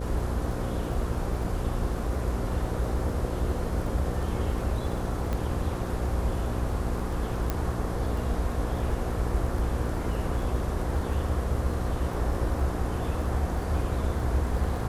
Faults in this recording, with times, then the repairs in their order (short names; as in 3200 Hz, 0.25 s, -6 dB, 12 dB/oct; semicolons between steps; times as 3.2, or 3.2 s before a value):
buzz 60 Hz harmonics 9 -33 dBFS
crackle 20/s -36 dBFS
5.33 pop -18 dBFS
7.5 pop -13 dBFS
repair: de-click; de-hum 60 Hz, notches 9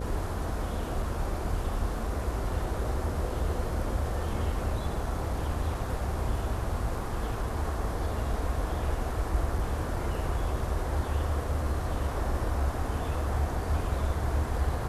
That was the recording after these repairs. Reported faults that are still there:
none